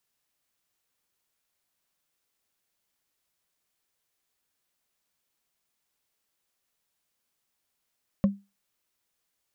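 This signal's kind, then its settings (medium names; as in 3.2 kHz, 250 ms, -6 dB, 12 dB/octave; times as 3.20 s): wood hit, lowest mode 199 Hz, decay 0.25 s, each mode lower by 9 dB, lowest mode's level -14.5 dB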